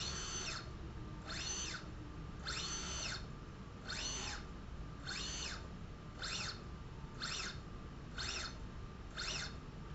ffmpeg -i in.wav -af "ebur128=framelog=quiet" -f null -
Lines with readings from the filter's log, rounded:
Integrated loudness:
  I:         -44.0 LUFS
  Threshold: -54.0 LUFS
Loudness range:
  LRA:         1.7 LU
  Threshold: -64.1 LUFS
  LRA low:   -44.7 LUFS
  LRA high:  -43.0 LUFS